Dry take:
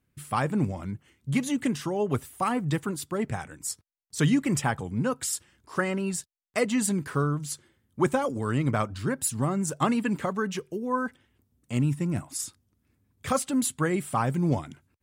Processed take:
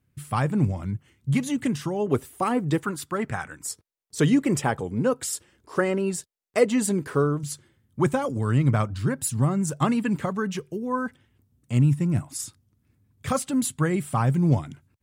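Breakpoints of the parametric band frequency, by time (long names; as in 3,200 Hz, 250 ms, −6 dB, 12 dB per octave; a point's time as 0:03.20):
parametric band +8 dB 1.2 octaves
110 Hz
from 0:02.07 390 Hz
from 0:02.83 1,400 Hz
from 0:03.66 440 Hz
from 0:07.43 120 Hz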